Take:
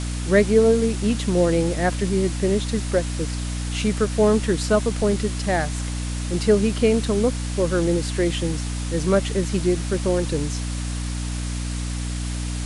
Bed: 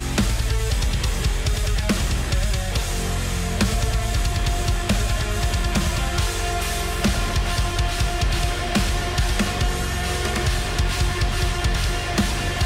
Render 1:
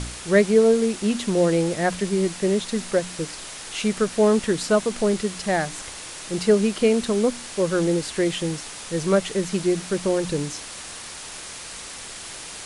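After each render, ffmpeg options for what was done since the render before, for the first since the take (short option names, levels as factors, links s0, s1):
-af "bandreject=f=60:t=h:w=4,bandreject=f=120:t=h:w=4,bandreject=f=180:t=h:w=4,bandreject=f=240:t=h:w=4,bandreject=f=300:t=h:w=4"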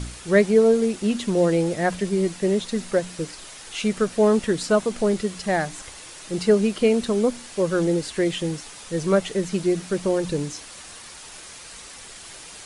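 -af "afftdn=nr=6:nf=-37"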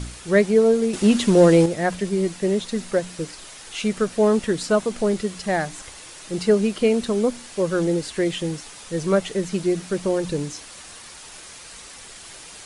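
-filter_complex "[0:a]asettb=1/sr,asplit=3[s0][s1][s2];[s0]atrim=end=0.934[s3];[s1]atrim=start=0.93:end=1.66,asetpts=PTS-STARTPTS,afade=t=in:d=0.004:c=qsin,afade=t=out:st=0.726:d=0.004:c=qsin,acontrast=76[s4];[s2]atrim=start=1.656[s5];[s3][s4]acrossfade=d=0.004:c1=hsin:c2=qsin[s6];[s6][s5]acrossfade=d=0.004:c1=qsin:c2=hsin"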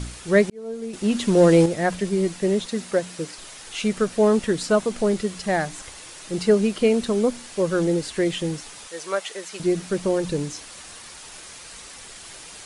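-filter_complex "[0:a]asettb=1/sr,asplit=3[s0][s1][s2];[s0]atrim=end=2.664[s3];[s1]atrim=start=2.66:end=3.38,asetpts=PTS-STARTPTS,afade=t=in:d=0.004:c=qsin,afade=t=out:st=0.716:d=0.004:c=qsin,highpass=f=140:p=1[s4];[s2]atrim=start=3.376[s5];[s3][s4]acrossfade=d=0.004:c1=hsin:c2=qsin[s6];[s6][s5]acrossfade=d=0.004:c1=qsin:c2=hsin,asettb=1/sr,asplit=3[s7][s8][s9];[s7]atrim=end=8.874[s10];[s8]atrim=start=8.87:end=9.6,asetpts=PTS-STARTPTS,afade=t=in:d=0.004:c=qsin,afade=t=out:st=0.726:d=0.004:c=qsin,highpass=710[s11];[s9]atrim=start=9.596[s12];[s10][s11]acrossfade=d=0.004:c1=hsin:c2=qsin[s13];[s13][s12]acrossfade=d=0.004:c1=qsin:c2=hsin,asplit=2[s14][s15];[s14]atrim=end=0.5,asetpts=PTS-STARTPTS,afade=t=out:st=0.496:d=0.004:c=hsin[s16];[s15]atrim=start=0.5,asetpts=PTS-STARTPTS,afade=t=in:d=1.11[s17];[s16][s17]concat=n=2:v=0:a=1"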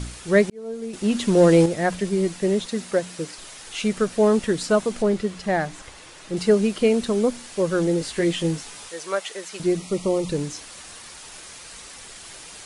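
-filter_complex "[0:a]asettb=1/sr,asplit=3[s0][s1][s2];[s0]atrim=end=5.024[s3];[s1]atrim=start=5.02:end=6.37,asetpts=PTS-STARTPTS,afade=t=in:d=0.004:c=qsin,afade=t=out:st=1.346:d=0.004:c=qsin,aemphasis=mode=reproduction:type=cd[s4];[s2]atrim=start=6.366[s5];[s3][s4]acrossfade=d=0.004:c1=hsin:c2=qsin[s6];[s6][s5]acrossfade=d=0.004:c1=qsin:c2=hsin,asettb=1/sr,asplit=3[s7][s8][s9];[s7]atrim=end=7.994[s10];[s8]atrim=start=7.99:end=8.94,asetpts=PTS-STARTPTS,afade=t=in:d=0.004:c=qsin,afade=t=out:st=0.946:d=0.004:c=qsin,asplit=2[s11][s12];[s12]adelay=18,volume=0.562[s13];[s11][s13]amix=inputs=2:normalize=0,atrim=end_sample=41895[s14];[s9]atrim=start=8.936[s15];[s10][s14]acrossfade=d=0.004:c1=hsin:c2=qsin[s16];[s16][s15]acrossfade=d=0.004:c1=qsin:c2=hsin,asettb=1/sr,asplit=3[s17][s18][s19];[s17]atrim=end=9.774[s20];[s18]atrim=start=9.77:end=10.29,asetpts=PTS-STARTPTS,afade=t=in:d=0.004:c=qsin,afade=t=out:st=0.516:d=0.004:c=qsin,asuperstop=centerf=1600:order=8:qfactor=3[s21];[s19]atrim=start=10.286[s22];[s20][s21]acrossfade=d=0.004:c1=hsin:c2=qsin[s23];[s23][s22]acrossfade=d=0.004:c1=qsin:c2=hsin"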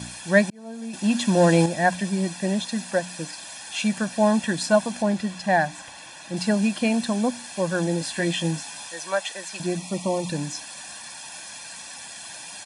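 -af "highpass=180,aecho=1:1:1.2:0.85"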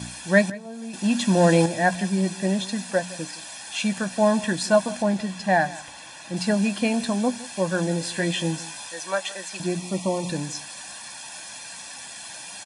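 -filter_complex "[0:a]asplit=2[s0][s1];[s1]adelay=16,volume=0.251[s2];[s0][s2]amix=inputs=2:normalize=0,asplit=2[s3][s4];[s4]adelay=163.3,volume=0.112,highshelf=f=4000:g=-3.67[s5];[s3][s5]amix=inputs=2:normalize=0"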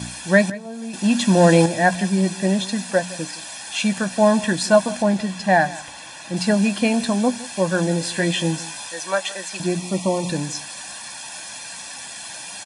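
-af "volume=1.58,alimiter=limit=0.708:level=0:latency=1"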